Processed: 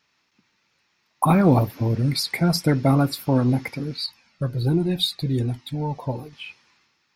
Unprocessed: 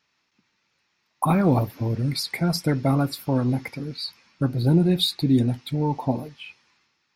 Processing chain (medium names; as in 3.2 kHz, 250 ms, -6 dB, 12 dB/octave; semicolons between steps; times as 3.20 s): 4.06–6.33 s: Shepard-style flanger falling 1.3 Hz; trim +3 dB